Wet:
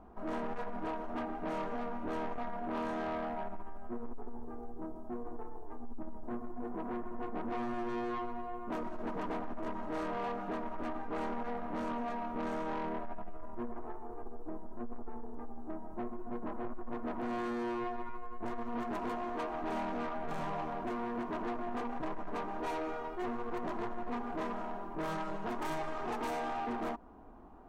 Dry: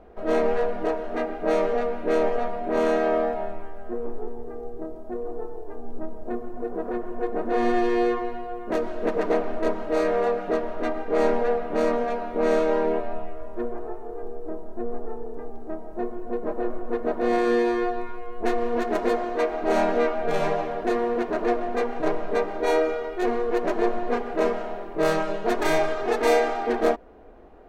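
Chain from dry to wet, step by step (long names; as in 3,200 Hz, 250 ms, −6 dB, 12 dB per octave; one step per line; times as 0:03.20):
octave-band graphic EQ 125/250/500/1,000/2,000/4,000 Hz +4/+6/−11/+10/−7/−5 dB
downward compressor, threshold −22 dBFS, peak gain reduction 6 dB
soft clipping −27 dBFS, distortion −11 dB
level −5.5 dB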